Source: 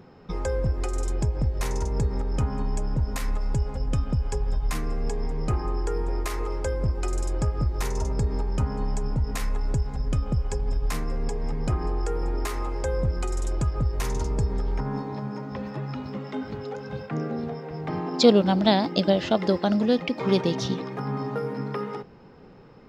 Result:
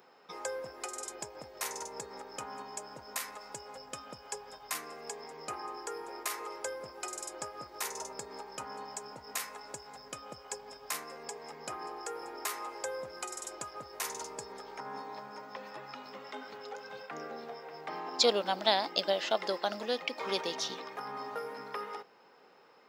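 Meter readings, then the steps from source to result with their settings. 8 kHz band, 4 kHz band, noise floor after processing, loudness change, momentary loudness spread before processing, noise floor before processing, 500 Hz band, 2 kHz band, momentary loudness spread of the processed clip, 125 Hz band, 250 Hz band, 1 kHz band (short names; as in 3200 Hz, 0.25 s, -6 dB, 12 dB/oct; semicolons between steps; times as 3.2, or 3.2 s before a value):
+1.0 dB, -2.0 dB, -56 dBFS, -10.5 dB, 10 LU, -43 dBFS, -9.5 dB, -3.0 dB, 14 LU, -31.5 dB, -21.0 dB, -4.5 dB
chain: HPF 650 Hz 12 dB/oct; high shelf 8100 Hz +10 dB; gain -3.5 dB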